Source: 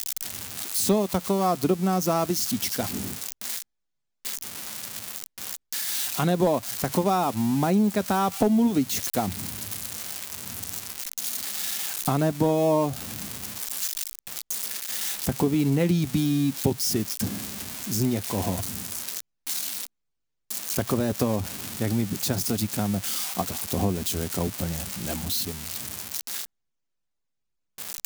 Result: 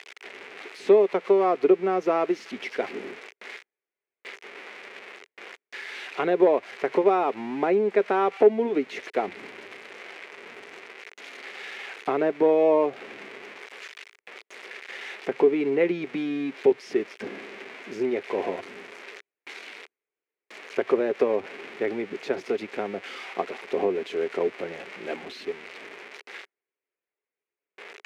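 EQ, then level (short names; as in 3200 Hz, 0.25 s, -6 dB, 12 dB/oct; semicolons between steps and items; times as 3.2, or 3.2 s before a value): resonant high-pass 410 Hz, resonance Q 4.9; synth low-pass 2200 Hz, resonance Q 3.1; -4.0 dB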